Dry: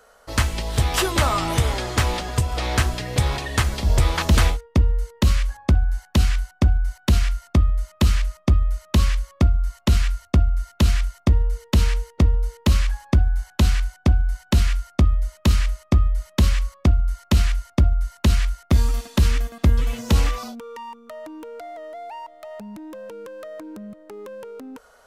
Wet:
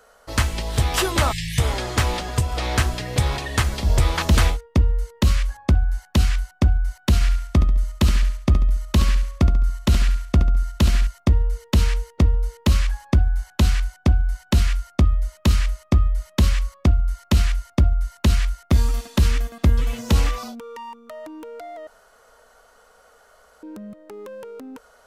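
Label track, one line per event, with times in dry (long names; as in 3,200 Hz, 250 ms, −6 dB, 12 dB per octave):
1.320000	1.580000	time-frequency box erased 200–1,600 Hz
7.140000	11.070000	repeating echo 70 ms, feedback 37%, level −9.5 dB
21.870000	23.630000	fill with room tone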